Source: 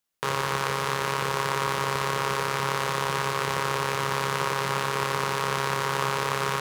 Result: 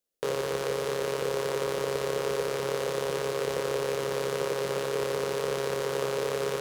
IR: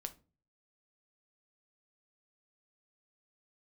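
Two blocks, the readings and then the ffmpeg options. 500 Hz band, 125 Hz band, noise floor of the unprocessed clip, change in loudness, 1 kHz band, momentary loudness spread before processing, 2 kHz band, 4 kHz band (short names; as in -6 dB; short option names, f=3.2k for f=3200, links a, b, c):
+4.0 dB, -8.0 dB, -30 dBFS, -3.5 dB, -10.5 dB, 1 LU, -9.0 dB, -6.0 dB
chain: -filter_complex "[0:a]equalizer=f=125:t=o:w=1:g=-10,equalizer=f=500:t=o:w=1:g=10,equalizer=f=1k:t=o:w=1:g=-12,equalizer=f=2k:t=o:w=1:g=-4,asplit=2[a][b];[1:a]atrim=start_sample=2205,lowpass=2.2k[c];[b][c]afir=irnorm=-1:irlink=0,volume=-3.5dB[d];[a][d]amix=inputs=2:normalize=0,volume=-4dB"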